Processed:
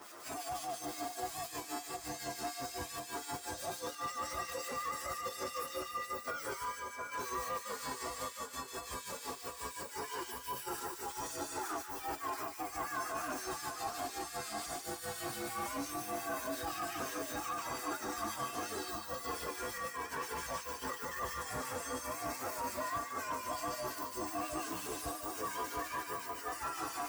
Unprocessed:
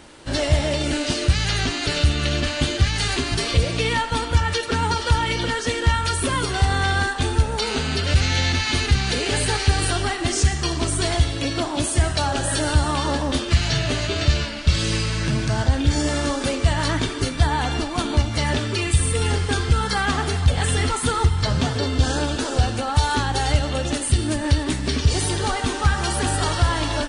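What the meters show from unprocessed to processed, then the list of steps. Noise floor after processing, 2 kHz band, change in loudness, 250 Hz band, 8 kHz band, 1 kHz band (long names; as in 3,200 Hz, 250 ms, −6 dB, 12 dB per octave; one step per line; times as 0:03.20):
−49 dBFS, −18.0 dB, −18.5 dB, −21.0 dB, −14.5 dB, −12.5 dB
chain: partials spread apart or drawn together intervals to 121%
high-pass filter 550 Hz 6 dB per octave
spectral tilt +2.5 dB per octave
two-band tremolo in antiphase 5.7 Hz, depth 70%, crossover 1,600 Hz
compressor whose output falls as the input rises −34 dBFS, ratio −0.5
brickwall limiter −28.5 dBFS, peak gain reduction 11 dB
high shelf with overshoot 1,800 Hz −8 dB, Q 1.5
soft clipping −32.5 dBFS, distortion −20 dB
echo with a time of its own for lows and highs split 1,600 Hz, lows 710 ms, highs 147 ms, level −4.5 dB
level +1 dB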